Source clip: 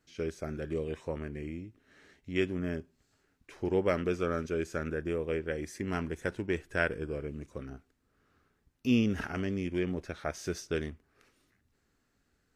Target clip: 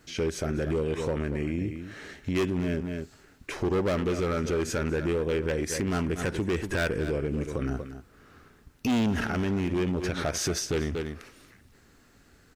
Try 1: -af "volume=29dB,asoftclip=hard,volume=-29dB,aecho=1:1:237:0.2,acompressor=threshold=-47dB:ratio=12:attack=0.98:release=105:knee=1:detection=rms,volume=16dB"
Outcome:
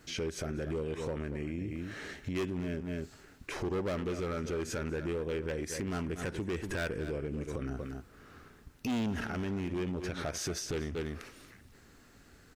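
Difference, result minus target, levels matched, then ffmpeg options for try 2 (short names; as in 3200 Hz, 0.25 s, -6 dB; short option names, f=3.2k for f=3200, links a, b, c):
compressor: peak gain reduction +7.5 dB
-af "volume=29dB,asoftclip=hard,volume=-29dB,aecho=1:1:237:0.2,acompressor=threshold=-39dB:ratio=12:attack=0.98:release=105:knee=1:detection=rms,volume=16dB"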